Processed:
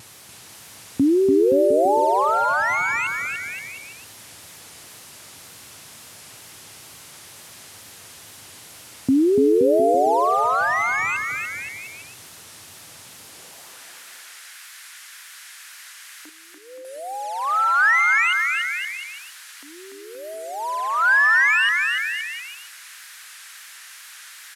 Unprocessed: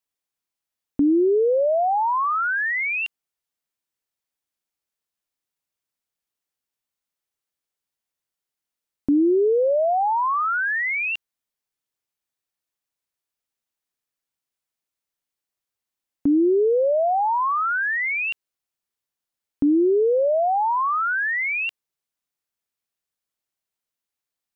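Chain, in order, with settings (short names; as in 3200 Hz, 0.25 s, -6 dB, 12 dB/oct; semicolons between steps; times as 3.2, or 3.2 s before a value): delta modulation 64 kbps, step -38 dBFS; wow and flutter 120 cents; 16.29–16.85 vocal tract filter e; high-pass sweep 98 Hz -> 1600 Hz, 13–13.84; on a send: bouncing-ball echo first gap 0.29 s, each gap 0.8×, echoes 5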